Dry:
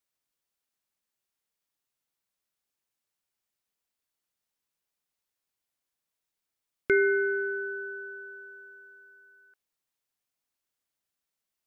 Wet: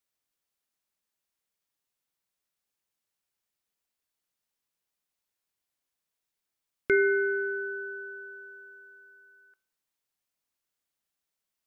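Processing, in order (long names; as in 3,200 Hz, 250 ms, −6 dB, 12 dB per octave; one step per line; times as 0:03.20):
hum removal 126.4 Hz, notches 12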